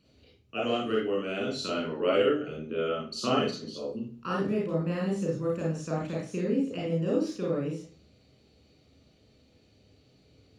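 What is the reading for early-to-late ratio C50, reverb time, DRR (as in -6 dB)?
1.5 dB, 0.45 s, -4.0 dB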